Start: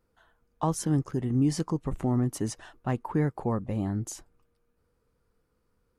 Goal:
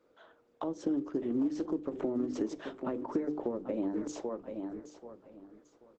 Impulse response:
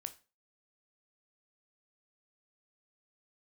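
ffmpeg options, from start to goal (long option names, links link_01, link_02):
-filter_complex "[0:a]highpass=frequency=300:width=0.5412,highpass=frequency=300:width=1.3066,equalizer=frequency=300:width_type=q:width=4:gain=4,equalizer=frequency=580:width_type=q:width=4:gain=6,equalizer=frequency=1300:width_type=q:width=4:gain=4,equalizer=frequency=2300:width_type=q:width=4:gain=5,equalizer=frequency=3500:width_type=q:width=4:gain=7,lowpass=frequency=6600:width=0.5412,lowpass=frequency=6600:width=1.3066,bandreject=frequency=50:width_type=h:width=6,bandreject=frequency=100:width_type=h:width=6,bandreject=frequency=150:width_type=h:width=6,bandreject=frequency=200:width_type=h:width=6,bandreject=frequency=250:width_type=h:width=6,bandreject=frequency=300:width_type=h:width=6,bandreject=frequency=350:width_type=h:width=6,bandreject=frequency=400:width_type=h:width=6,bandreject=frequency=450:width_type=h:width=6,bandreject=frequency=500:width_type=h:width=6,aecho=1:1:784|1568|2352:0.2|0.0459|0.0106,acrossover=split=490[link_01][link_02];[link_02]acompressor=threshold=-39dB:ratio=3[link_03];[link_01][link_03]amix=inputs=2:normalize=0,bandreject=frequency=750:width=12,acompressor=threshold=-39dB:ratio=10,tiltshelf=frequency=740:gain=8,asplit=2[link_04][link_05];[1:a]atrim=start_sample=2205,afade=type=out:start_time=0.18:duration=0.01,atrim=end_sample=8379[link_06];[link_05][link_06]afir=irnorm=-1:irlink=0,volume=-1dB[link_07];[link_04][link_07]amix=inputs=2:normalize=0,volume=1.5dB" -ar 48000 -c:a libopus -b:a 10k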